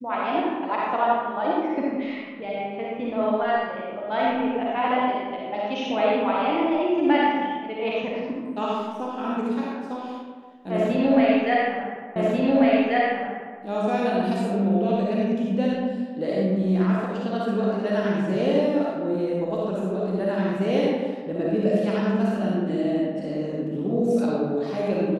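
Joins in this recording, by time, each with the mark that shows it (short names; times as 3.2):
12.16 repeat of the last 1.44 s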